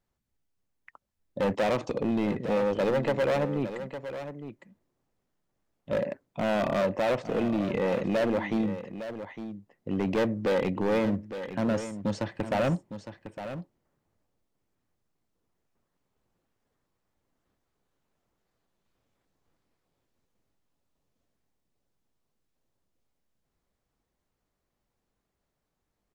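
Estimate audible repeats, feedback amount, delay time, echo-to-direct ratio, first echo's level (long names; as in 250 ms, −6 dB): 1, repeats not evenly spaced, 859 ms, −11.0 dB, −11.0 dB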